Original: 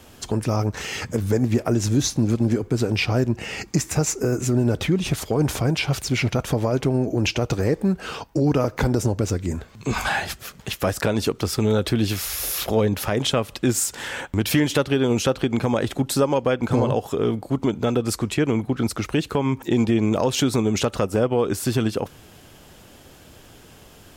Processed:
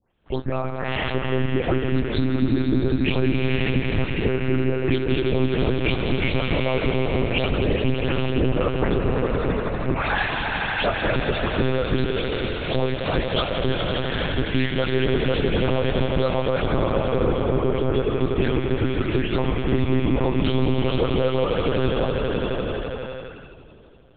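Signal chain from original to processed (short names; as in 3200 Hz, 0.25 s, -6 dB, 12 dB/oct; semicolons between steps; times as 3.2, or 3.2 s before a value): spectral delay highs late, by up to 0.262 s; gate -40 dBFS, range -17 dB; swelling echo 83 ms, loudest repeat 5, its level -9 dB; compressor 2:1, threshold -26 dBFS, peak gain reduction 7.5 dB; on a send at -18.5 dB: reverb RT60 5.2 s, pre-delay 95 ms; on the sum: spectral noise reduction 10 dB; monotone LPC vocoder at 8 kHz 130 Hz; maximiser +13.5 dB; gain -8 dB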